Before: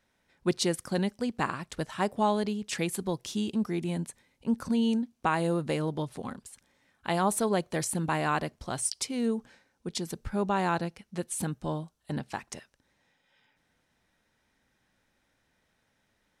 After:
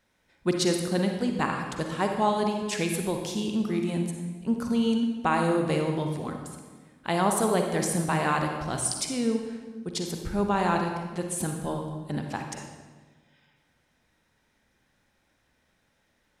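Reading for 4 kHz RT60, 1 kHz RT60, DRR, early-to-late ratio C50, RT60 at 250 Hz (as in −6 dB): 1.0 s, 1.3 s, 3.0 dB, 4.0 dB, 1.7 s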